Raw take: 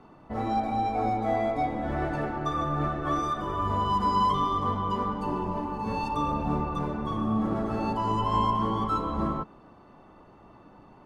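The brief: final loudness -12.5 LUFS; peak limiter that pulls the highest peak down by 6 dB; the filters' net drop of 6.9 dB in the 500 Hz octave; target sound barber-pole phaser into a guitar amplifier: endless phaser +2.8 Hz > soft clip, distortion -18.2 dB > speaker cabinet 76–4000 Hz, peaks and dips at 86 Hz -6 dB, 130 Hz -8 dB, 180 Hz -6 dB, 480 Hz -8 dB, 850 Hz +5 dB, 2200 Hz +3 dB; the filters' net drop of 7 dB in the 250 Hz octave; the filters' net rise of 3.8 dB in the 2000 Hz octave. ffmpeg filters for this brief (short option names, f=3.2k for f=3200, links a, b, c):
-filter_complex "[0:a]equalizer=f=250:t=o:g=-4,equalizer=f=500:t=o:g=-7,equalizer=f=2k:t=o:g=4,alimiter=limit=-21.5dB:level=0:latency=1,asplit=2[a][b];[b]afreqshift=2.8[c];[a][c]amix=inputs=2:normalize=1,asoftclip=threshold=-27dB,highpass=76,equalizer=f=86:t=q:w=4:g=-6,equalizer=f=130:t=q:w=4:g=-8,equalizer=f=180:t=q:w=4:g=-6,equalizer=f=480:t=q:w=4:g=-8,equalizer=f=850:t=q:w=4:g=5,equalizer=f=2.2k:t=q:w=4:g=3,lowpass=f=4k:w=0.5412,lowpass=f=4k:w=1.3066,volume=22.5dB"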